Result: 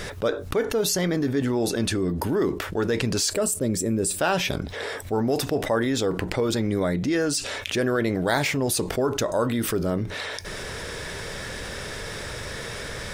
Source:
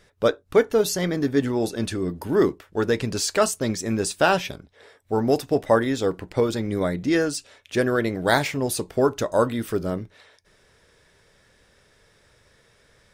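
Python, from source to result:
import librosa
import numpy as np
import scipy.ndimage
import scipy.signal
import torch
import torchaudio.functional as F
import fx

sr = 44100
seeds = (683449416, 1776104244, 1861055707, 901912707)

y = fx.spec_box(x, sr, start_s=3.3, length_s=0.89, low_hz=640.0, high_hz=7200.0, gain_db=-10)
y = fx.env_flatten(y, sr, amount_pct=70)
y = F.gain(torch.from_numpy(y), -8.0).numpy()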